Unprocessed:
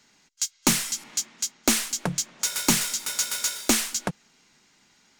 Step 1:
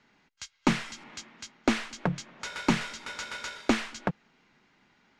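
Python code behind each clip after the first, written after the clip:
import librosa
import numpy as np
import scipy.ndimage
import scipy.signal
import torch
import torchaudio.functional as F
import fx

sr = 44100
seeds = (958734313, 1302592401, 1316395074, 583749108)

y = scipy.signal.sosfilt(scipy.signal.butter(2, 2400.0, 'lowpass', fs=sr, output='sos'), x)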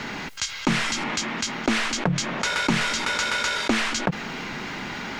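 y = fx.env_flatten(x, sr, amount_pct=70)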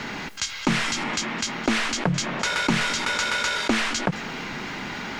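y = x + 10.0 ** (-19.5 / 20.0) * np.pad(x, (int(213 * sr / 1000.0), 0))[:len(x)]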